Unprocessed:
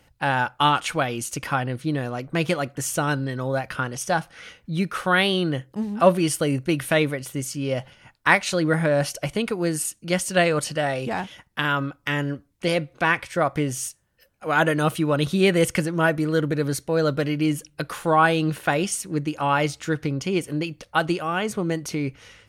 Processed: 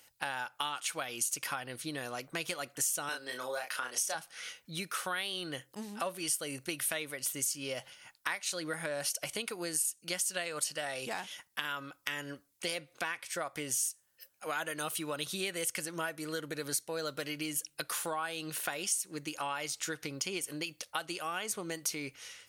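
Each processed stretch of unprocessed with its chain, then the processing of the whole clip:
3.09–4.15 s: high-pass 350 Hz + doubling 32 ms -4 dB
whole clip: tilt EQ +3 dB/octave; compression 6:1, threshold -27 dBFS; tone controls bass -4 dB, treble +4 dB; trim -6.5 dB

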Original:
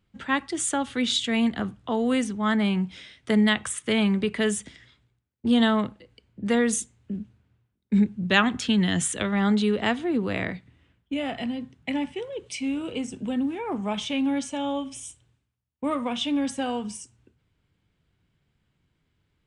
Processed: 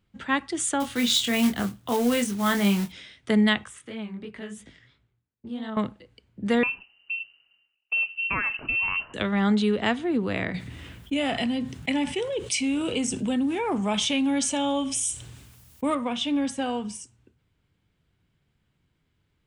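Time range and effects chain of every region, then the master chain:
0.80–2.92 s: short-mantissa float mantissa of 2-bit + treble shelf 5.6 kHz +6.5 dB + doubling 25 ms -6 dB
3.64–5.77 s: treble shelf 4.8 kHz -9 dB + compression 2:1, threshold -39 dBFS + chorus 2.9 Hz, delay 18 ms, depth 6.8 ms
6.63–9.14 s: compression 4:1, threshold -23 dBFS + frequency inversion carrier 2.9 kHz
10.54–15.95 s: treble shelf 4.4 kHz +10 dB + level flattener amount 50%
whole clip: none

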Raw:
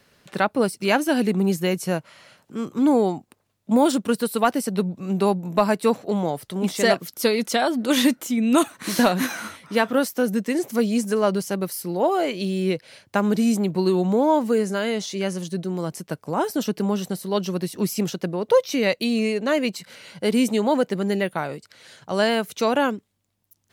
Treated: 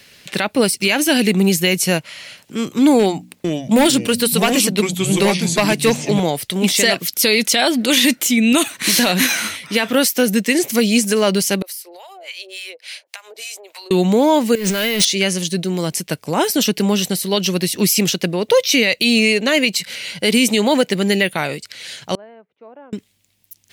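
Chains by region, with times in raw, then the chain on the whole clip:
2.99–6.20 s: hum notches 60/120/180/240/300 Hz + hard clipper -12 dBFS + ever faster or slower copies 452 ms, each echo -4 st, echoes 2, each echo -6 dB
11.62–13.91 s: inverse Chebyshev high-pass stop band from 210 Hz, stop band 50 dB + harmonic tremolo 3.5 Hz, depth 100%, crossover 760 Hz + compression 10:1, threshold -42 dBFS
14.55–15.05 s: jump at every zero crossing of -30 dBFS + compressor with a negative ratio -27 dBFS + careless resampling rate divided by 3×, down filtered, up hold
22.15–22.93 s: Bessel low-pass 590 Hz, order 4 + differentiator
whole clip: resonant high shelf 1.7 kHz +8.5 dB, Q 1.5; peak limiter -11 dBFS; trim +6.5 dB

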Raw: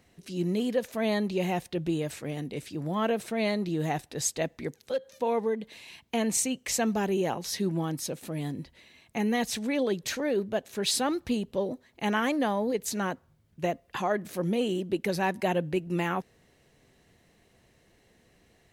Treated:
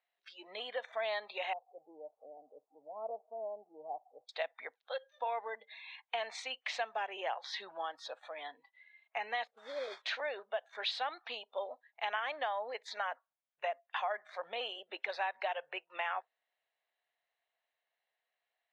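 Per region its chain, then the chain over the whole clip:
1.53–4.29 s: zero-crossing glitches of -20.5 dBFS + Gaussian low-pass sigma 14 samples
9.47–10.02 s: Chebyshev low-pass 570 Hz, order 4 + modulation noise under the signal 13 dB
whole clip: spectral noise reduction 20 dB; Chebyshev band-pass 670–3800 Hz, order 3; compression 4:1, threshold -34 dBFS; trim +1 dB

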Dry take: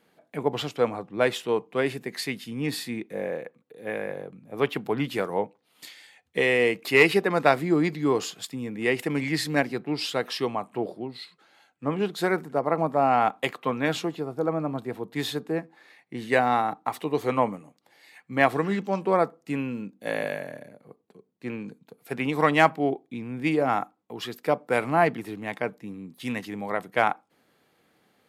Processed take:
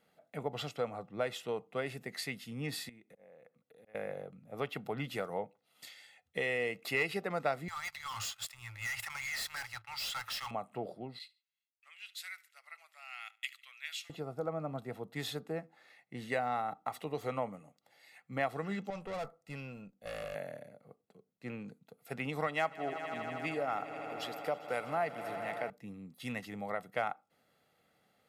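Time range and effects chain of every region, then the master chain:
2.89–3.95 s: slow attack 528 ms + compression 4:1, threshold -49 dBFS
7.68–10.51 s: Chebyshev band-stop 110–860 Hz, order 5 + waveshaping leveller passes 2 + overload inside the chain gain 29 dB
11.19–14.10 s: gate -48 dBFS, range -25 dB + Chebyshev high-pass 2.3 kHz, order 3 + feedback delay 73 ms, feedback 32%, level -21.5 dB
18.90–20.35 s: peaking EQ 270 Hz -7 dB 0.99 oct + valve stage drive 29 dB, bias 0.45 + tape noise reduction on one side only decoder only
22.47–25.70 s: bass shelf 210 Hz -8.5 dB + echo with a slow build-up 80 ms, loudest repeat 5, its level -18 dB
whole clip: comb 1.5 ms, depth 47%; compression 2:1, threshold -27 dBFS; trim -7.5 dB

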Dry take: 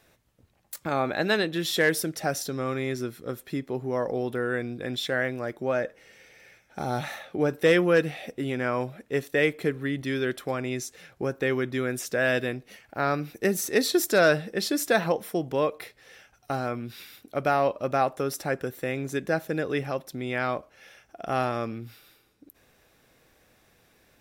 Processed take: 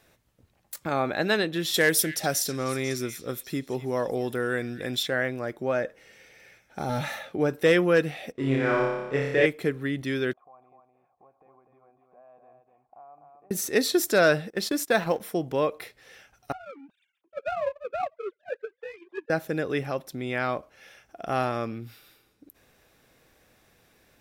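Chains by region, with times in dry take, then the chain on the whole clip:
1.74–5.03 s: treble shelf 4.6 kHz +9.5 dB + repeats whose band climbs or falls 247 ms, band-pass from 2.8 kHz, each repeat 0.7 oct, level -9 dB
6.89–7.32 s: comb of notches 370 Hz + waveshaping leveller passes 1
8.32–9.46 s: companding laws mixed up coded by A + distance through air 71 m + flutter echo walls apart 5.1 m, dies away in 1.1 s
10.33–13.51 s: compression, threshold -35 dBFS + cascade formant filter a + delay 249 ms -5 dB
14.50–15.20 s: companding laws mixed up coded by A + gate -34 dBFS, range -11 dB
16.52–19.30 s: formants replaced by sine waves + flange 1.8 Hz, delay 0.1 ms, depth 7.8 ms, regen -42% + power-law waveshaper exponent 1.4
whole clip: none

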